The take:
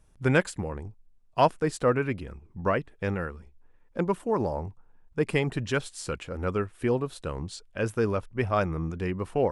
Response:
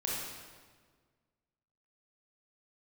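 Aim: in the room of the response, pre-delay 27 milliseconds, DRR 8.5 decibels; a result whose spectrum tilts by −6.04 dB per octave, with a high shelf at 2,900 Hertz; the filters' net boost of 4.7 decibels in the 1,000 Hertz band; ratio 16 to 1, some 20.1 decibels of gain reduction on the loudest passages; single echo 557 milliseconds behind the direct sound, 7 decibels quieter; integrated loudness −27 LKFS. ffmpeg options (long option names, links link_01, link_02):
-filter_complex "[0:a]equalizer=frequency=1000:width_type=o:gain=6.5,highshelf=frequency=2900:gain=-5.5,acompressor=threshold=-31dB:ratio=16,aecho=1:1:557:0.447,asplit=2[link_01][link_02];[1:a]atrim=start_sample=2205,adelay=27[link_03];[link_02][link_03]afir=irnorm=-1:irlink=0,volume=-13dB[link_04];[link_01][link_04]amix=inputs=2:normalize=0,volume=10dB"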